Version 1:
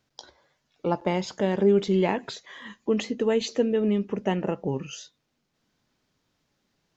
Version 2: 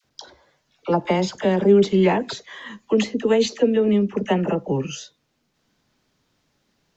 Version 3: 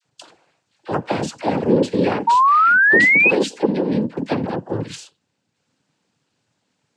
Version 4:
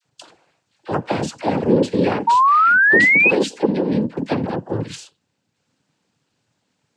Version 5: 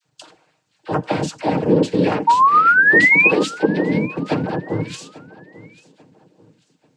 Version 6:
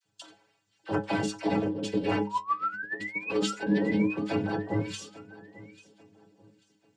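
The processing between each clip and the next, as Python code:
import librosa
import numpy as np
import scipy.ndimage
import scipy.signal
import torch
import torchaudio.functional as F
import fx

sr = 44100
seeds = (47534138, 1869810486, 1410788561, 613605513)

y1 = fx.dispersion(x, sr, late='lows', ms=46.0, hz=860.0)
y1 = F.gain(torch.from_numpy(y1), 5.5).numpy()
y2 = fx.noise_vocoder(y1, sr, seeds[0], bands=8)
y2 = fx.spec_paint(y2, sr, seeds[1], shape='rise', start_s=2.27, length_s=1.04, low_hz=910.0, high_hz=2600.0, level_db=-12.0)
y2 = F.gain(torch.from_numpy(y2), -1.0).numpy()
y3 = fx.low_shelf(y2, sr, hz=83.0, db=5.0)
y4 = y3 + 0.4 * np.pad(y3, (int(6.5 * sr / 1000.0), 0))[:len(y3)]
y4 = fx.echo_feedback(y4, sr, ms=841, feedback_pct=34, wet_db=-20.5)
y5 = fx.over_compress(y4, sr, threshold_db=-18.0, ratio=-0.5)
y5 = fx.stiff_resonator(y5, sr, f0_hz=100.0, decay_s=0.3, stiffness=0.008)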